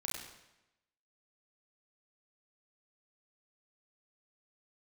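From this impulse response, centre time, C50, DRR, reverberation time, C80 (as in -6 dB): 59 ms, 2.0 dB, -3.0 dB, 0.95 s, 4.5 dB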